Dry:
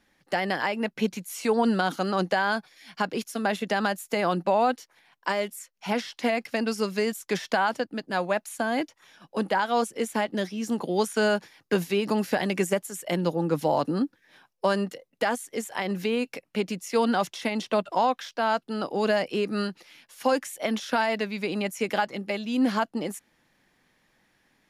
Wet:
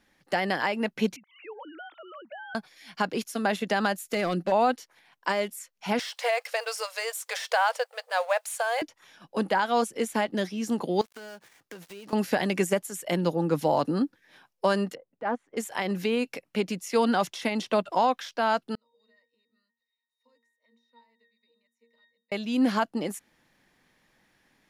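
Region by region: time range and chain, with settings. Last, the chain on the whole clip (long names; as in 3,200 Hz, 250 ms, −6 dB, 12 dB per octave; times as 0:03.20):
0:01.16–0:02.55: three sine waves on the formant tracks + low-shelf EQ 490 Hz −11 dB + downward compressor 2 to 1, threshold −52 dBFS
0:03.97–0:04.52: parametric band 930 Hz −12 dB 0.47 octaves + hard clipping −20.5 dBFS
0:05.99–0:08.82: mu-law and A-law mismatch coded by mu + linear-phase brick-wall high-pass 450 Hz + parametric band 8,500 Hz +5 dB 0.25 octaves
0:11.01–0:12.13: gap after every zero crossing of 0.11 ms + low-shelf EQ 360 Hz −7 dB + downward compressor 4 to 1, threshold −43 dBFS
0:14.95–0:15.57: low-pass filter 1,300 Hz + transient designer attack −12 dB, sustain −3 dB
0:18.75–0:22.32: first difference + resonances in every octave A#, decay 0.36 s
whole clip: no processing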